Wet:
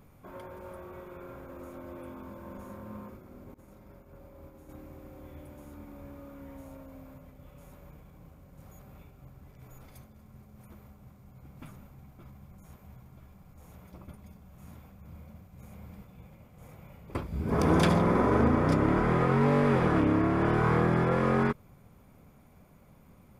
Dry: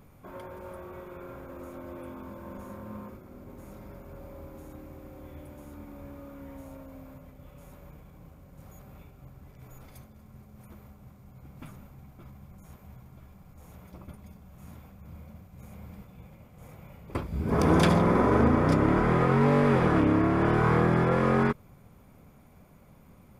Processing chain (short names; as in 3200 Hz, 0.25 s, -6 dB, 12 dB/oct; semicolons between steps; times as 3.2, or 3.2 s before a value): 3.54–4.69 expander -39 dBFS; gain -2 dB